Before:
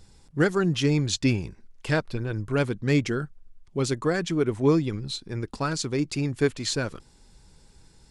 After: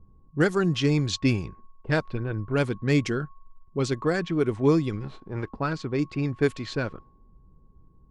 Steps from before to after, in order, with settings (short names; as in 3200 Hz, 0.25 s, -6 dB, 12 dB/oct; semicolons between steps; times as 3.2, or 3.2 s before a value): 5–5.47 spectral whitening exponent 0.6; whine 1100 Hz -51 dBFS; low-pass opened by the level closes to 300 Hz, open at -19 dBFS